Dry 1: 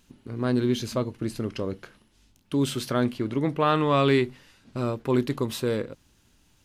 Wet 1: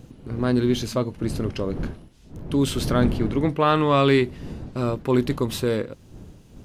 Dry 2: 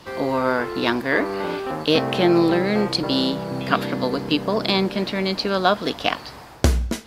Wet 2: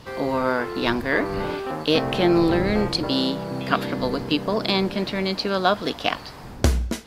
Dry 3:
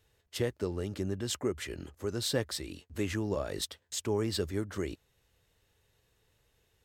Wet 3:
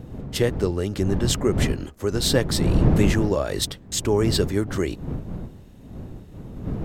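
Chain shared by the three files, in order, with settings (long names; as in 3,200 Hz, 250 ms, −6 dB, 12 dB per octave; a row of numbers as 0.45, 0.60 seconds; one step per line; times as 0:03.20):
wind on the microphone 190 Hz −36 dBFS
loudness normalisation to −23 LKFS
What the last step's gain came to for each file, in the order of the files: +3.0, −1.5, +10.0 decibels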